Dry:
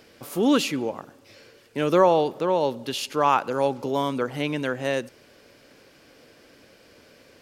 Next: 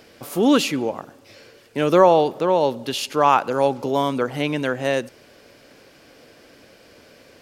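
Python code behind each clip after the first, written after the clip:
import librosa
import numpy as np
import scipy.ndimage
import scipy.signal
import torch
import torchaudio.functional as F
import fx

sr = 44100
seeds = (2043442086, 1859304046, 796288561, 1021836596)

y = fx.peak_eq(x, sr, hz=700.0, db=2.5, octaves=0.44)
y = F.gain(torch.from_numpy(y), 3.5).numpy()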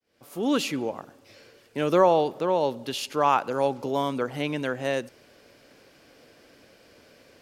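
y = fx.fade_in_head(x, sr, length_s=0.7)
y = F.gain(torch.from_numpy(y), -5.5).numpy()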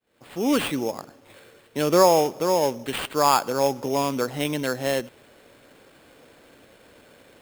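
y = fx.sample_hold(x, sr, seeds[0], rate_hz=5900.0, jitter_pct=0)
y = F.gain(torch.from_numpy(y), 2.5).numpy()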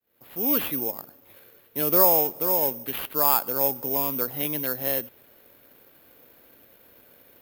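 y = (np.kron(scipy.signal.resample_poly(x, 1, 3), np.eye(3)[0]) * 3)[:len(x)]
y = F.gain(torch.from_numpy(y), -6.5).numpy()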